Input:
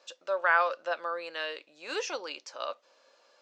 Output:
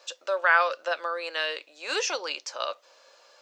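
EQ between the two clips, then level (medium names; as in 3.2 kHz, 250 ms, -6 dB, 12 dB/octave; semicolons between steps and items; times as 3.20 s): high-pass 410 Hz 12 dB/octave; treble shelf 6.6 kHz +6.5 dB; dynamic bell 880 Hz, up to -5 dB, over -37 dBFS, Q 0.87; +6.5 dB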